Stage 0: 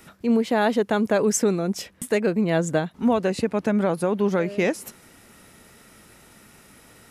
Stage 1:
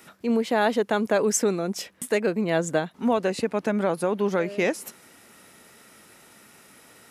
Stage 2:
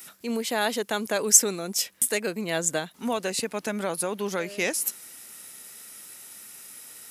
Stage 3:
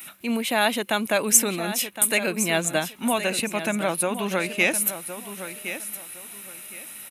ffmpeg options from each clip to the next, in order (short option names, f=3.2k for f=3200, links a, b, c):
-af "highpass=f=270:p=1"
-af "crystalizer=i=6:c=0,volume=-6.5dB"
-af "superequalizer=7b=0.501:12b=1.78:14b=0.355:15b=0.447,aecho=1:1:1064|2128|3192:0.282|0.0648|0.0149,volume=4.5dB"